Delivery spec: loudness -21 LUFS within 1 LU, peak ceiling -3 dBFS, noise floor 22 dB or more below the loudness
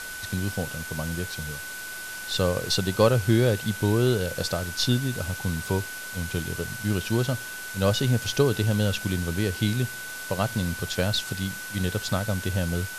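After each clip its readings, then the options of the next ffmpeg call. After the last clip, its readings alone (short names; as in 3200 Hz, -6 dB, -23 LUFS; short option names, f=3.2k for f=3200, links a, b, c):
steady tone 1500 Hz; tone level -36 dBFS; noise floor -37 dBFS; noise floor target -49 dBFS; loudness -26.5 LUFS; peak -7.5 dBFS; loudness target -21.0 LUFS
-> -af "bandreject=f=1.5k:w=30"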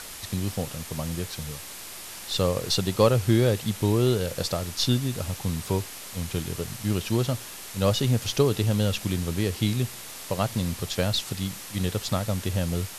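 steady tone none; noise floor -40 dBFS; noise floor target -49 dBFS
-> -af "afftdn=nr=9:nf=-40"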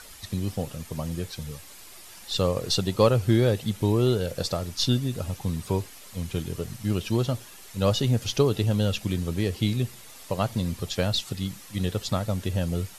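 noise floor -46 dBFS; noise floor target -49 dBFS
-> -af "afftdn=nr=6:nf=-46"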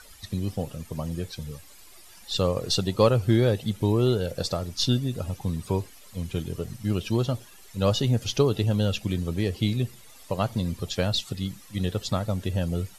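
noise floor -49 dBFS; loudness -27.0 LUFS; peak -7.5 dBFS; loudness target -21.0 LUFS
-> -af "volume=6dB,alimiter=limit=-3dB:level=0:latency=1"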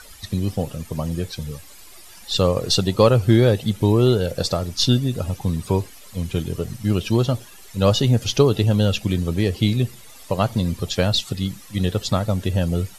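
loudness -21.0 LUFS; peak -3.0 dBFS; noise floor -43 dBFS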